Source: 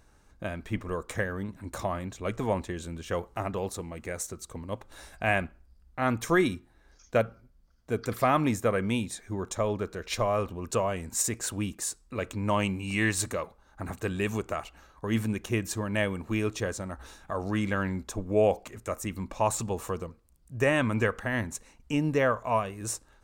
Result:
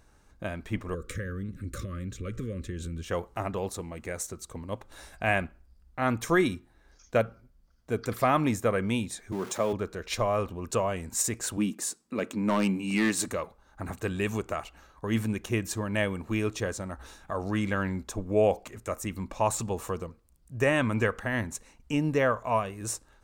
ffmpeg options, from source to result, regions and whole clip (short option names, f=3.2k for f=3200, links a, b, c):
-filter_complex "[0:a]asettb=1/sr,asplit=3[a][b][c];[a]atrim=end=0.944[d];[b]atrim=start=0.94:end=3.04,asetpts=PTS-STARTPTS,afade=t=in:d=0.004:c=qsin,afade=t=out:st=2.096:d=0.004:c=qsin,lowshelf=f=200:g=10.5,acompressor=threshold=-32dB:ratio=3:attack=3.2:release=140:knee=1:detection=peak,asuperstop=centerf=810:order=12:qfactor=1.4[e];[c]atrim=start=3.036[f];[d][e]acrossfade=d=0.004:c1=hsin:c2=qsin[g];[g][f]acrossfade=d=0.004:c1=qsin:c2=hsin,asettb=1/sr,asplit=3[h][i][j];[h]atrim=end=9.324[k];[i]atrim=start=9.32:end=9.73,asetpts=PTS-STARTPTS,afade=t=in:d=0.004:c=qsin,afade=t=out:st=0.406:d=0.004:c=qsin,aeval=exprs='val(0)+0.5*0.0126*sgn(val(0))':c=same,highpass=f=140:w=0.5412,highpass=f=140:w=1.3066[l];[j]atrim=start=9.726[m];[k][l]acrossfade=d=0.004:c1=hsin:c2=qsin[n];[n][m]acrossfade=d=0.004:c1=qsin:c2=hsin,asettb=1/sr,asplit=3[o][p][q];[o]atrim=end=11.574[r];[p]atrim=start=11.57:end=13.28,asetpts=PTS-STARTPTS,afade=t=in:d=0.004:c=qsin,afade=t=out:st=1.706:d=0.004:c=qsin,highpass=f=220:t=q:w=2.2,asoftclip=type=hard:threshold=-19dB[s];[q]atrim=start=13.276[t];[r][s]acrossfade=d=0.004:c1=hsin:c2=qsin[u];[u][t]acrossfade=d=0.004:c1=qsin:c2=hsin"